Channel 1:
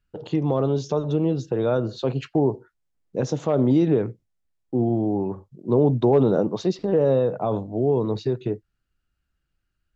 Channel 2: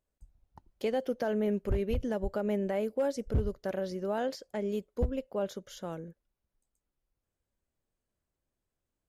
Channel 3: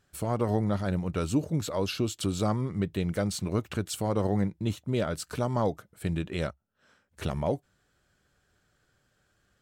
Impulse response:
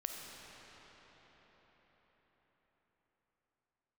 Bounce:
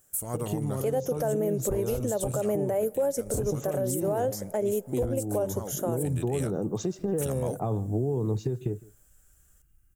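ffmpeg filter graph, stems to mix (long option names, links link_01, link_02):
-filter_complex "[0:a]bass=frequency=250:gain=12,treble=frequency=4000:gain=-6,aecho=1:1:2.5:0.3,acompressor=threshold=-25dB:ratio=5,adelay=200,volume=0dB,asplit=2[link_01][link_02];[link_02]volume=-23.5dB[link_03];[1:a]equalizer=frequency=570:width=0.6:gain=13.5,volume=-0.5dB,asplit=3[link_04][link_05][link_06];[link_05]volume=-23.5dB[link_07];[2:a]volume=-4dB[link_08];[link_06]apad=whole_len=424129[link_09];[link_08][link_09]sidechaincompress=threshold=-23dB:ratio=5:attack=6.2:release=1430[link_10];[3:a]atrim=start_sample=2205[link_11];[link_07][link_11]afir=irnorm=-1:irlink=0[link_12];[link_03]aecho=0:1:157:1[link_13];[link_01][link_04][link_10][link_12][link_13]amix=inputs=5:normalize=0,aexciter=amount=11.7:drive=6.5:freq=6500,alimiter=limit=-19dB:level=0:latency=1:release=214"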